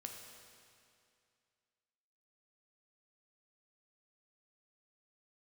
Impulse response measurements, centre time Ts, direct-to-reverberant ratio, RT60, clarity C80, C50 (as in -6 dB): 72 ms, 1.5 dB, 2.4 s, 4.5 dB, 3.5 dB